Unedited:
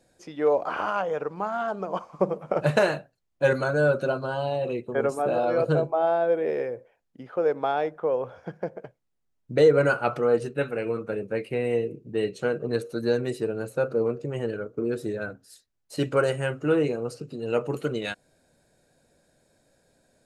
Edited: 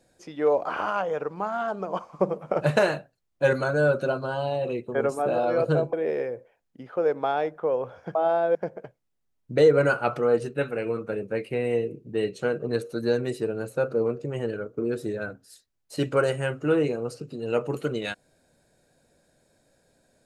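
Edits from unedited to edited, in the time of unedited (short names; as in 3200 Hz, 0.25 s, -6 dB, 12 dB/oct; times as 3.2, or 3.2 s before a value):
5.93–6.33 move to 8.55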